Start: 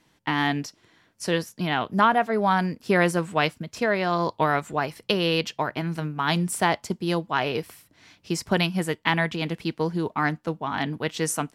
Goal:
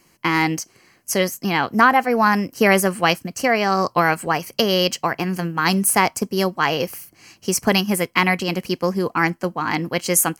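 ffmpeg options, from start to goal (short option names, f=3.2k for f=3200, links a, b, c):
-af "crystalizer=i=1.5:c=0,asetrate=48951,aresample=44100,asuperstop=centerf=3600:order=4:qfactor=4.5,volume=5dB"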